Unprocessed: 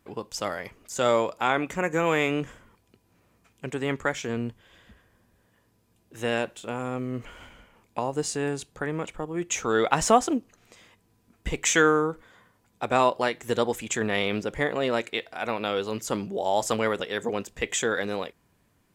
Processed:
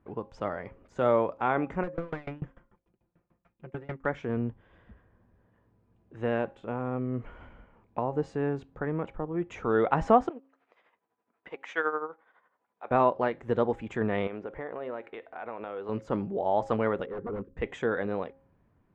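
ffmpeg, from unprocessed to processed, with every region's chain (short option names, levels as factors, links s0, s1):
-filter_complex "[0:a]asettb=1/sr,asplit=3[s0][s1][s2];[s0]atrim=end=1.834[s3];[s1]atrim=start=1.83:end=4.06,asetpts=PTS-STARTPTS,afade=t=in:d=0.004:c=qsin,afade=t=out:st=2.226:d=0.004:c=qsin,aecho=1:1:5.7:0.78,atrim=end_sample=98343,asoftclip=type=hard:threshold=0.0631,aeval=exprs='val(0)*pow(10,-26*if(lt(mod(6.8*n/s,1),2*abs(6.8)/1000),1-mod(6.8*n/s,1)/(2*abs(6.8)/1000),(mod(6.8*n/s,1)-2*abs(6.8)/1000)/(1-2*abs(6.8)/1000))/20)':c=same[s4];[s2]atrim=start=4.056[s5];[s3][s4]acrossfade=d=0.004:c1=hsin:c2=qsin[s6];[s6][s5]acrossfade=d=0.004:c1=qsin:c2=hsin,asettb=1/sr,asplit=3[s7][s8][s9];[s7]atrim=end=10.294[s10];[s8]atrim=start=10.29:end=12.91,asetpts=PTS-STARTPTS,afade=t=in:d=0.004:c=qsin,afade=t=out:st=2.616:d=0.004:c=qsin,tremolo=f=12:d=0.66,highpass=630,lowpass=5300[s11];[s9]atrim=start=12.906[s12];[s10][s11]acrossfade=d=0.004:c1=hsin:c2=qsin[s13];[s13][s12]acrossfade=d=0.004:c1=qsin:c2=hsin,asettb=1/sr,asplit=3[s14][s15][s16];[s14]atrim=end=14.274[s17];[s15]atrim=start=14.27:end=15.89,asetpts=PTS-STARTPTS,afade=t=in:d=0.004:c=qsin,afade=t=out:st=1.616:d=0.004:c=qsin,bass=f=250:g=-12,treble=f=4000:g=-11,acompressor=threshold=0.0251:ratio=3:attack=3.2:release=140:knee=1:detection=peak[s18];[s16]atrim=start=15.886[s19];[s17][s18]acrossfade=d=0.004:c1=hsin:c2=qsin[s20];[s20][s19]acrossfade=d=0.004:c1=qsin:c2=hsin,asettb=1/sr,asplit=3[s21][s22][s23];[s21]atrim=end=17.064[s24];[s22]atrim=start=17.06:end=17.57,asetpts=PTS-STARTPTS,afade=t=in:d=0.004:c=qsin,afade=t=out:st=0.506:d=0.004:c=qsin,asuperstop=centerf=750:order=20:qfactor=1.5,aeval=exprs='0.0422*(abs(mod(val(0)/0.0422+3,4)-2)-1)':c=same,adynamicsmooth=sensitivity=2:basefreq=740[s25];[s23]atrim=start=17.566[s26];[s24][s25]acrossfade=d=0.004:c1=hsin:c2=qsin[s27];[s27][s26]acrossfade=d=0.004:c1=qsin:c2=hsin,lowpass=1400,lowshelf=f=140:g=4.5,bandreject=f=270.3:t=h:w=4,bandreject=f=540.6:t=h:w=4,bandreject=f=810.9:t=h:w=4,volume=0.841"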